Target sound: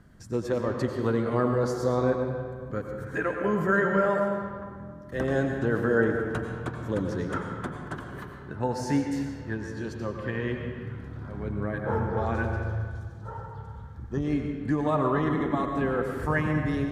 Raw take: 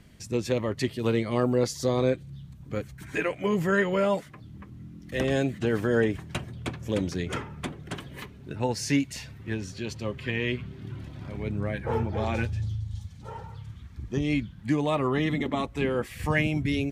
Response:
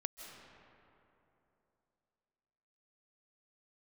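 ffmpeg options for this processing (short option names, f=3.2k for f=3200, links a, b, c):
-filter_complex "[0:a]highshelf=f=1.9k:t=q:w=3:g=-7[a];[1:a]atrim=start_sample=2205,asetrate=74970,aresample=44100[b];[a][b]afir=irnorm=-1:irlink=0,volume=6dB"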